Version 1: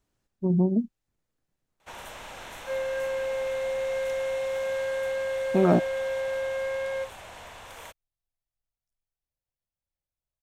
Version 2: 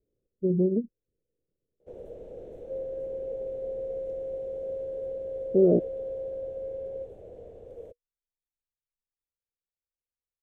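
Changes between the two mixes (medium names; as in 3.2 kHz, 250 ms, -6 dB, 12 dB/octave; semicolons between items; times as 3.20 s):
speech -4.0 dB; second sound -12.0 dB; master: add FFT filter 260 Hz 0 dB, 480 Hz +13 dB, 980 Hz -30 dB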